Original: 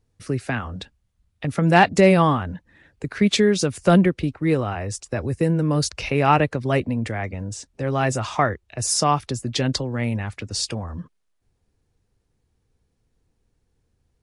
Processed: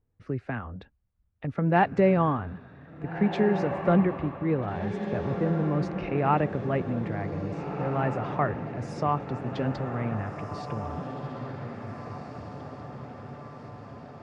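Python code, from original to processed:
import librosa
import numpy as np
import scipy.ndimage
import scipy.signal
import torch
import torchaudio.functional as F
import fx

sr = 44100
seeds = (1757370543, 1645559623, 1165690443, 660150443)

y = scipy.signal.sosfilt(scipy.signal.butter(2, 1700.0, 'lowpass', fs=sr, output='sos'), x)
y = fx.echo_diffused(y, sr, ms=1751, feedback_pct=56, wet_db=-7.5)
y = y * 10.0 ** (-6.5 / 20.0)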